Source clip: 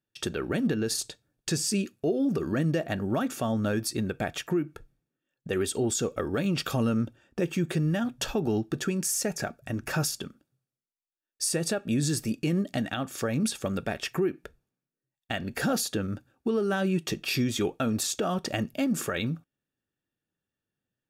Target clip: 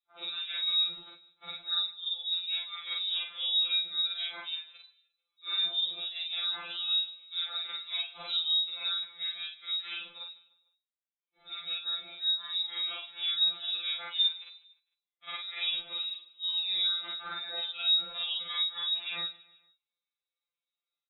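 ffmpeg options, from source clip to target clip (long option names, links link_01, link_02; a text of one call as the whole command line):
ffmpeg -i in.wav -af "afftfilt=real='re':imag='-im':win_size=4096:overlap=0.75,aecho=1:1:150|300|450:0.0891|0.0428|0.0205,lowpass=frequency=3400:width_type=q:width=0.5098,lowpass=frequency=3400:width_type=q:width=0.6013,lowpass=frequency=3400:width_type=q:width=0.9,lowpass=frequency=3400:width_type=q:width=2.563,afreqshift=-4000,afftfilt=real='re*2.83*eq(mod(b,8),0)':imag='im*2.83*eq(mod(b,8),0)':win_size=2048:overlap=0.75,volume=1dB" out.wav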